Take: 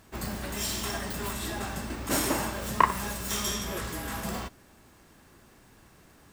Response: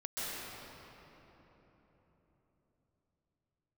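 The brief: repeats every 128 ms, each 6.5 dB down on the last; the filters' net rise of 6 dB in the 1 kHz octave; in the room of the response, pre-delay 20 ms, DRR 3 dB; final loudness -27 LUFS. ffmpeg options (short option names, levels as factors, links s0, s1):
-filter_complex "[0:a]equalizer=f=1000:t=o:g=6.5,aecho=1:1:128|256|384|512|640|768:0.473|0.222|0.105|0.0491|0.0231|0.0109,asplit=2[s0][s1];[1:a]atrim=start_sample=2205,adelay=20[s2];[s1][s2]afir=irnorm=-1:irlink=0,volume=0.422[s3];[s0][s3]amix=inputs=2:normalize=0,volume=0.841"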